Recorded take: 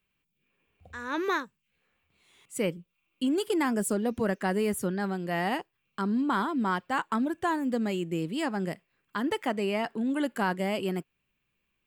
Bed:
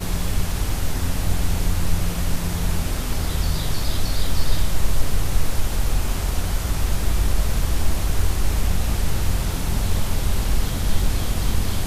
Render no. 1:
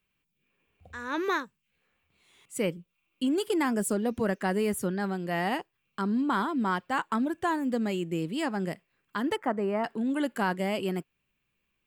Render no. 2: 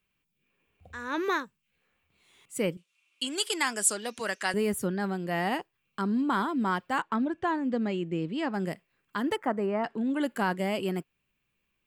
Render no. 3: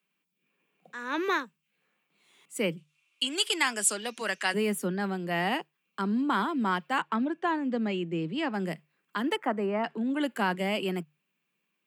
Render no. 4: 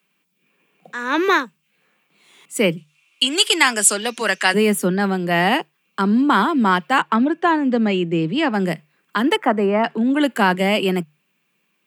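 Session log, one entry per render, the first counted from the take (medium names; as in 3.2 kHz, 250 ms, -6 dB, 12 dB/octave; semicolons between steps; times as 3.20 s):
9.36–9.84 s: resonant high shelf 2.1 kHz -13 dB, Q 1.5
2.77–4.54 s: frequency weighting ITU-R 468; 7.02–8.54 s: distance through air 130 m; 9.66–10.21 s: distance through air 63 m
Chebyshev high-pass 150 Hz, order 10; dynamic bell 2.7 kHz, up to +6 dB, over -49 dBFS, Q 1.6
trim +11.5 dB; peak limiter -1 dBFS, peak gain reduction 1.5 dB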